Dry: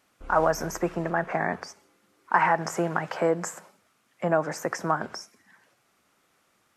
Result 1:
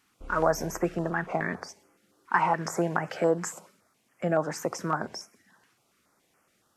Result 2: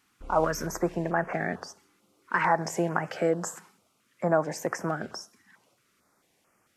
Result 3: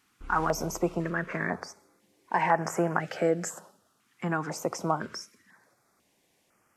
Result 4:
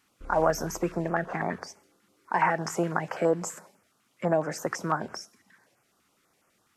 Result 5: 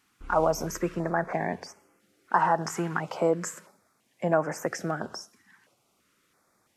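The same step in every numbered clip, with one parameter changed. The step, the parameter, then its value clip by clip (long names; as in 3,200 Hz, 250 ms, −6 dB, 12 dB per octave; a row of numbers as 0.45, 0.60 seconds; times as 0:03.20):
notch on a step sequencer, speed: 7.1, 4.5, 2, 12, 3 Hertz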